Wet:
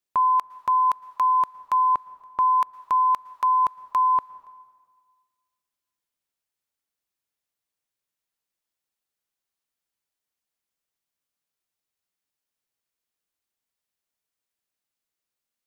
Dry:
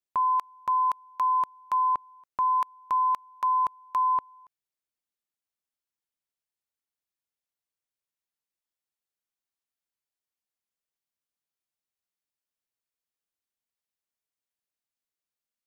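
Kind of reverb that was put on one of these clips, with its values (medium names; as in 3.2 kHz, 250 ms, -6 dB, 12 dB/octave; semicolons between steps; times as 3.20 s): plate-style reverb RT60 1.6 s, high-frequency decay 0.95×, pre-delay 100 ms, DRR 18 dB; trim +4.5 dB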